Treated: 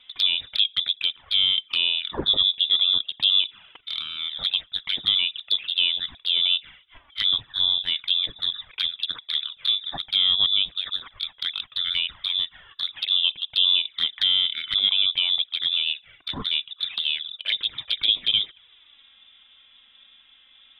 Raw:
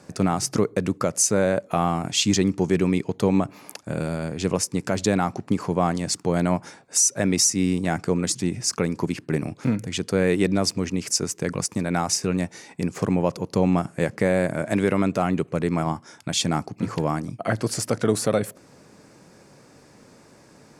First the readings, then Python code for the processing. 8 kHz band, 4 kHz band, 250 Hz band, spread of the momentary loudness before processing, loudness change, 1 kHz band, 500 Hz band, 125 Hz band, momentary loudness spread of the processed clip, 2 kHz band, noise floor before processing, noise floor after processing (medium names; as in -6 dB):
under -35 dB, +14.5 dB, under -20 dB, 8 LU, +2.0 dB, -16.5 dB, under -20 dB, under -20 dB, 10 LU, -1.0 dB, -53 dBFS, -56 dBFS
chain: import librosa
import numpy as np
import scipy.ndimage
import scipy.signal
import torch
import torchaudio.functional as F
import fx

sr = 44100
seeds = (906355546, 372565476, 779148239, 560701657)

y = fx.freq_invert(x, sr, carrier_hz=3700)
y = fx.env_flanger(y, sr, rest_ms=4.1, full_db=-18.5)